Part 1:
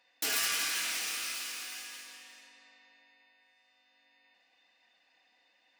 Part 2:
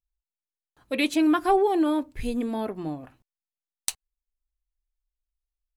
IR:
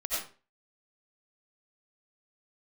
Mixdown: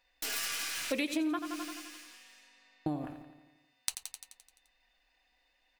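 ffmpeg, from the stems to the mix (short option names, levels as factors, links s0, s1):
-filter_complex "[0:a]aeval=exprs='if(lt(val(0),0),0.708*val(0),val(0))':c=same,volume=0.708[s0];[1:a]volume=1.19,asplit=3[s1][s2][s3];[s1]atrim=end=1.39,asetpts=PTS-STARTPTS,afade=t=out:st=1.386:d=0.004:c=hsin[s4];[s2]atrim=start=1.39:end=2.86,asetpts=PTS-STARTPTS,volume=0[s5];[s3]atrim=start=2.86,asetpts=PTS-STARTPTS,afade=t=in:d=0.004:c=hsin[s6];[s4][s5][s6]concat=n=3:v=0:a=1,asplit=3[s7][s8][s9];[s8]volume=0.266[s10];[s9]apad=whole_len=255778[s11];[s0][s11]sidechaincompress=threshold=0.0355:ratio=8:attack=10:release=109[s12];[s10]aecho=0:1:86|172|258|344|430|516|602|688|774:1|0.59|0.348|0.205|0.121|0.0715|0.0422|0.0249|0.0147[s13];[s12][s7][s13]amix=inputs=3:normalize=0,acompressor=threshold=0.0355:ratio=16"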